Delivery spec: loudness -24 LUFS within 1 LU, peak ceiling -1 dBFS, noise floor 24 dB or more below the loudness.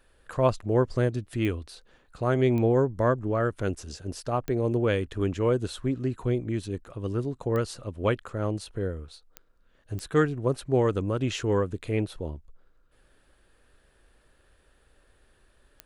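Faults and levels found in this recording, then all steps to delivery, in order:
clicks found 7; loudness -28.0 LUFS; peak level -10.0 dBFS; loudness target -24.0 LUFS
-> de-click; trim +4 dB

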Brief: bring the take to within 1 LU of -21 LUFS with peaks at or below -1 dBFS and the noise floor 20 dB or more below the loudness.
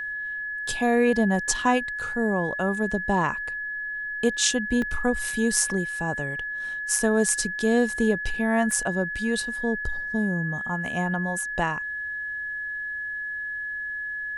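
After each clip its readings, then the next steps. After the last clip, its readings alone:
dropouts 2; longest dropout 2.4 ms; steady tone 1.7 kHz; tone level -29 dBFS; loudness -25.5 LUFS; peak level -4.0 dBFS; loudness target -21.0 LUFS
-> interpolate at 4.82/8.71 s, 2.4 ms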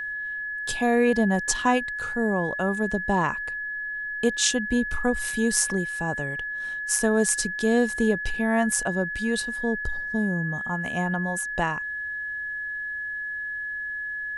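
dropouts 0; steady tone 1.7 kHz; tone level -29 dBFS
-> band-stop 1.7 kHz, Q 30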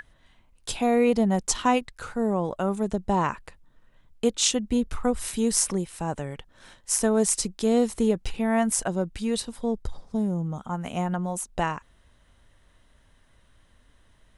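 steady tone not found; loudness -26.0 LUFS; peak level -4.0 dBFS; loudness target -21.0 LUFS
-> trim +5 dB; peak limiter -1 dBFS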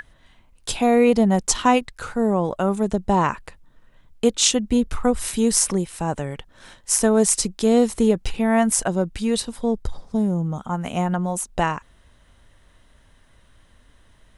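loudness -21.0 LUFS; peak level -1.0 dBFS; noise floor -55 dBFS

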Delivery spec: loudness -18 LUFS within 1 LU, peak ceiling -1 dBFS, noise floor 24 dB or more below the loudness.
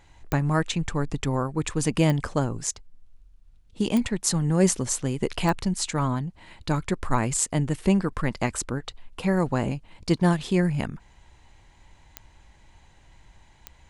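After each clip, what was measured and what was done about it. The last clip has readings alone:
clicks found 6; loudness -26.0 LUFS; peak level -5.0 dBFS; loudness target -18.0 LUFS
-> de-click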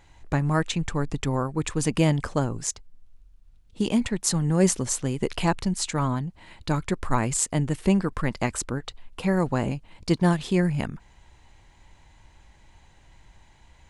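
clicks found 0; loudness -26.0 LUFS; peak level -5.0 dBFS; loudness target -18.0 LUFS
-> trim +8 dB; peak limiter -1 dBFS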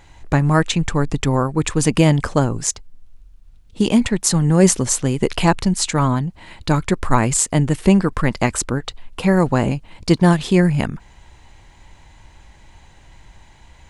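loudness -18.0 LUFS; peak level -1.0 dBFS; noise floor -48 dBFS

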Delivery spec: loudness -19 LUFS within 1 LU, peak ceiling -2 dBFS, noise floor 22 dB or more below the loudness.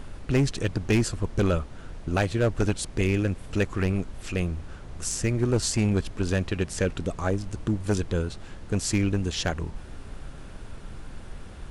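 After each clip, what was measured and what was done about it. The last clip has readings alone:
clipped samples 0.9%; clipping level -16.0 dBFS; noise floor -42 dBFS; noise floor target -49 dBFS; loudness -27.0 LUFS; peak level -16.0 dBFS; loudness target -19.0 LUFS
-> clip repair -16 dBFS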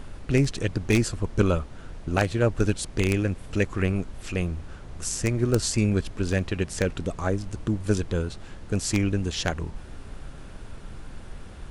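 clipped samples 0.0%; noise floor -42 dBFS; noise floor target -49 dBFS
-> noise print and reduce 7 dB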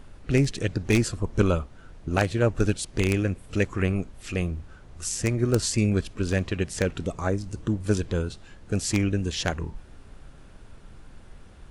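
noise floor -48 dBFS; noise floor target -49 dBFS
-> noise print and reduce 6 dB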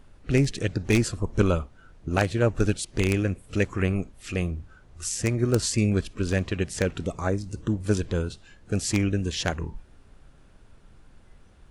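noise floor -54 dBFS; loudness -26.5 LUFS; peak level -7.0 dBFS; loudness target -19.0 LUFS
-> trim +7.5 dB; peak limiter -2 dBFS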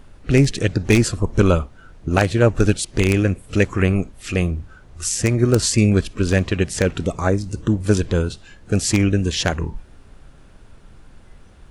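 loudness -19.5 LUFS; peak level -2.0 dBFS; noise floor -46 dBFS

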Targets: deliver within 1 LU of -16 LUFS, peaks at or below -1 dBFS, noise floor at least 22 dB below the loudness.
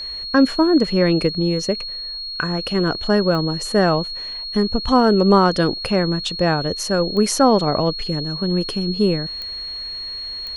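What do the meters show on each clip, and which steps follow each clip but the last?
clicks found 4; steady tone 4.3 kHz; tone level -27 dBFS; loudness -19.0 LUFS; peak level -2.5 dBFS; loudness target -16.0 LUFS
-> de-click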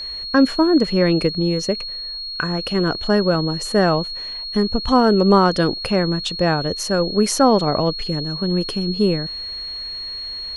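clicks found 0; steady tone 4.3 kHz; tone level -27 dBFS
-> band-stop 4.3 kHz, Q 30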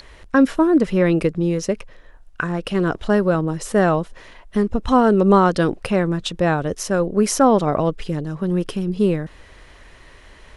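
steady tone not found; loudness -19.5 LUFS; peak level -3.0 dBFS; loudness target -16.0 LUFS
-> trim +3.5 dB; peak limiter -1 dBFS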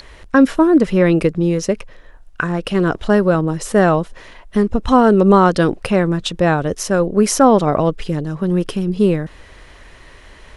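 loudness -16.0 LUFS; peak level -1.0 dBFS; noise floor -43 dBFS

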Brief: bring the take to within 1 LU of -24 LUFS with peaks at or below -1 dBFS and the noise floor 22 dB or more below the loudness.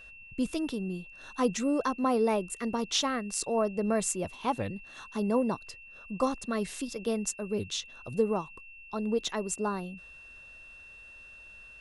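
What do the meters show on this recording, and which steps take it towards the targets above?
steady tone 2.7 kHz; tone level -48 dBFS; loudness -31.5 LUFS; peak level -14.0 dBFS; loudness target -24.0 LUFS
-> band-stop 2.7 kHz, Q 30; trim +7.5 dB

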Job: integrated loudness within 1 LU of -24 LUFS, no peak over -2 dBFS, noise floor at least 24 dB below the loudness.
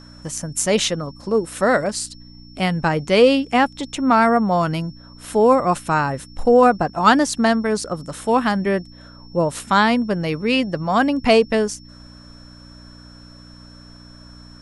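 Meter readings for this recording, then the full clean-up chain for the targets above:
hum 60 Hz; highest harmonic 300 Hz; hum level -42 dBFS; steady tone 5.4 kHz; tone level -47 dBFS; loudness -18.5 LUFS; peak level -1.0 dBFS; loudness target -24.0 LUFS
-> de-hum 60 Hz, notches 5; band-stop 5.4 kHz, Q 30; trim -5.5 dB

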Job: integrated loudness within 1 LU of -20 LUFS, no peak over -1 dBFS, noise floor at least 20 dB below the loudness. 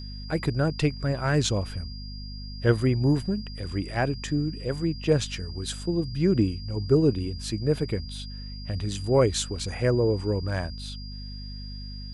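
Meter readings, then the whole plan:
hum 50 Hz; highest harmonic 250 Hz; hum level -35 dBFS; steady tone 4.8 kHz; tone level -43 dBFS; loudness -26.5 LUFS; peak level -8.5 dBFS; loudness target -20.0 LUFS
-> de-hum 50 Hz, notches 5; band-stop 4.8 kHz, Q 30; trim +6.5 dB

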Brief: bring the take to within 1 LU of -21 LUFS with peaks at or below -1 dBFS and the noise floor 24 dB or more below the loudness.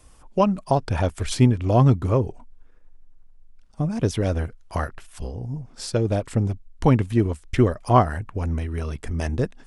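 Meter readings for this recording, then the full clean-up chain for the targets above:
loudness -23.0 LUFS; peak level -3.5 dBFS; loudness target -21.0 LUFS
-> trim +2 dB

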